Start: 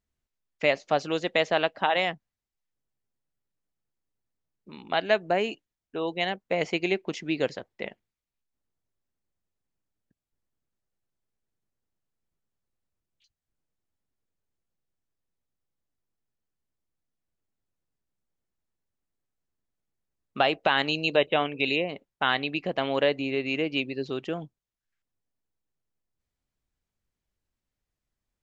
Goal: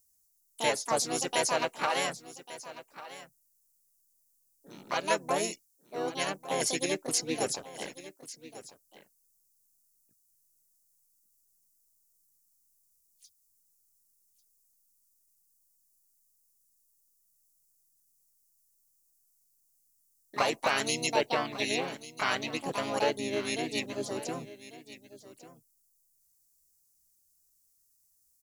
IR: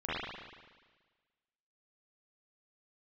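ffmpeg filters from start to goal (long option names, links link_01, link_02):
-filter_complex "[0:a]aexciter=amount=14.5:drive=9.1:freq=5700,asplit=3[link_01][link_02][link_03];[link_02]asetrate=35002,aresample=44100,atempo=1.25992,volume=-5dB[link_04];[link_03]asetrate=66075,aresample=44100,atempo=0.66742,volume=-2dB[link_05];[link_01][link_04][link_05]amix=inputs=3:normalize=0,aecho=1:1:1145:0.158,volume=-7.5dB"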